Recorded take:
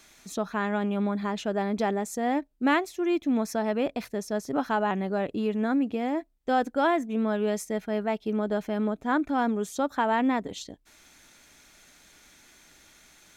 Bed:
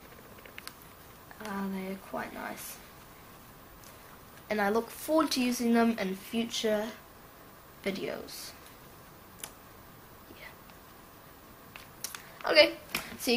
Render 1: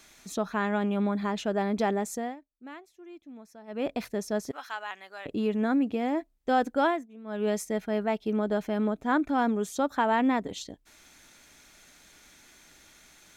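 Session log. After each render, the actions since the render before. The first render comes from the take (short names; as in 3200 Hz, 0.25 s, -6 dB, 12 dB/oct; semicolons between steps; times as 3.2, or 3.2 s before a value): 2.12–3.91 dip -21 dB, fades 0.24 s; 4.51–5.26 Bessel high-pass 1900 Hz; 6.83–7.48 dip -19.5 dB, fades 0.24 s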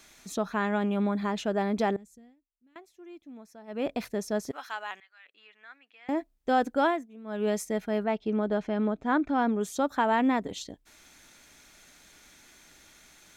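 1.96–2.76 passive tone stack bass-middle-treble 10-0-1; 5–6.09 ladder band-pass 2400 Hz, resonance 30%; 8.04–9.61 air absorption 91 m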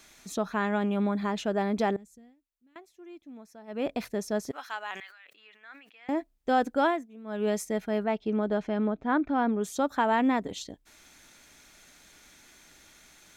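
4.9–6.11 sustainer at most 71 dB/s; 8.79–9.64 air absorption 120 m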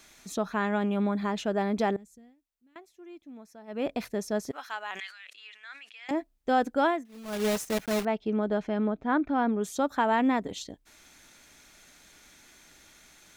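4.99–6.11 weighting filter ITU-R 468; 7.05–8.07 block floating point 3-bit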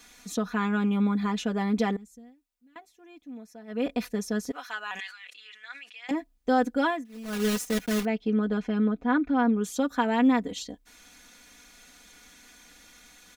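comb 4.1 ms, depth 82%; dynamic EQ 760 Hz, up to -5 dB, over -36 dBFS, Q 1.2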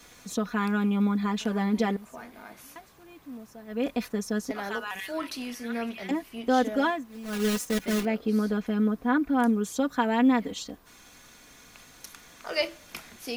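add bed -7 dB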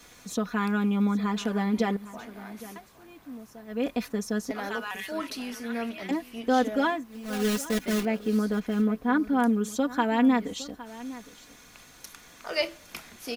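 echo 0.811 s -17 dB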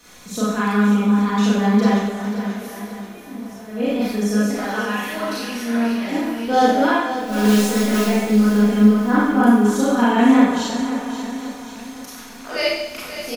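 feedback echo 0.533 s, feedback 49%, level -11 dB; Schroeder reverb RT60 0.9 s, combs from 30 ms, DRR -8 dB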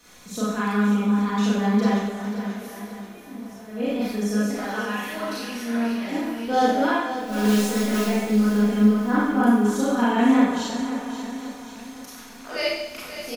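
gain -4.5 dB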